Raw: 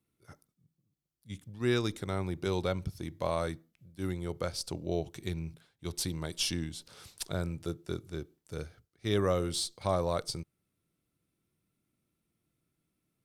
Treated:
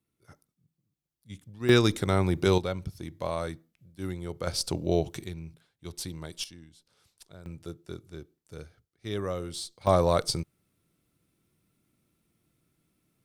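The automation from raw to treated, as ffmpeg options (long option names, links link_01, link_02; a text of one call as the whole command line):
ffmpeg -i in.wav -af "asetnsamples=nb_out_samples=441:pad=0,asendcmd='1.69 volume volume 9dB;2.58 volume volume 0dB;4.47 volume volume 7dB;5.24 volume volume -3dB;6.44 volume volume -15dB;7.46 volume volume -4dB;9.87 volume volume 7.5dB',volume=-1dB" out.wav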